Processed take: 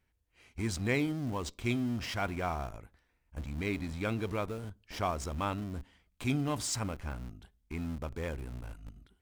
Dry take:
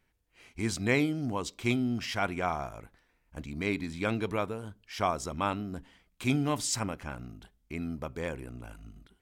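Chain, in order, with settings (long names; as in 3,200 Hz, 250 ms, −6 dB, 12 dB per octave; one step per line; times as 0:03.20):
parametric band 72 Hz +9 dB 0.93 octaves
in parallel at −10 dB: comparator with hysteresis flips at −37.5 dBFS
on the sum: level −5 dB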